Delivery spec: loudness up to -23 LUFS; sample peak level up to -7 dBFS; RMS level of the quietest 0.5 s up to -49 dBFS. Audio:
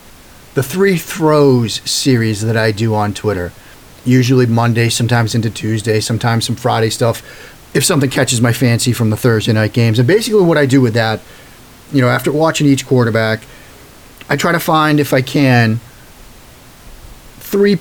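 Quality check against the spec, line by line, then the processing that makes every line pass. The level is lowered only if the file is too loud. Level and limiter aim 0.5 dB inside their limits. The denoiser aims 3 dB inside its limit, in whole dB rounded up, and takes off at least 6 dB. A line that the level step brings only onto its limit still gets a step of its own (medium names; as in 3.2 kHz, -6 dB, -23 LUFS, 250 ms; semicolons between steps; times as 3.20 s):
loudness -13.5 LUFS: fail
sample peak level -2.0 dBFS: fail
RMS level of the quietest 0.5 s -39 dBFS: fail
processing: noise reduction 6 dB, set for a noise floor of -39 dBFS; trim -10 dB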